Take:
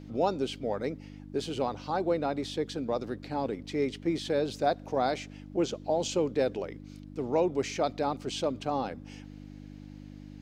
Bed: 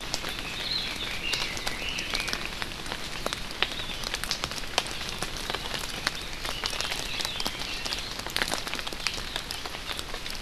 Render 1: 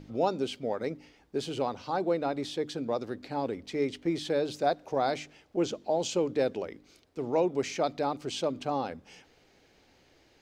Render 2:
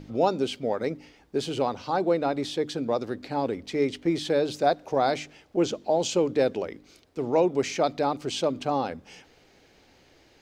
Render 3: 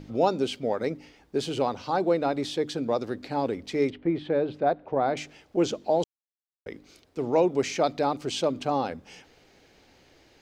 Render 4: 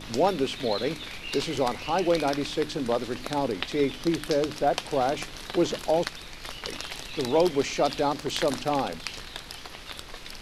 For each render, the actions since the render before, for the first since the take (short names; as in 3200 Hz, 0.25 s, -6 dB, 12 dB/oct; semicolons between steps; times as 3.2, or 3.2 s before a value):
de-hum 50 Hz, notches 6
gain +4.5 dB
3.9–5.17 air absorption 480 m; 6.04–6.66 mute
add bed -6 dB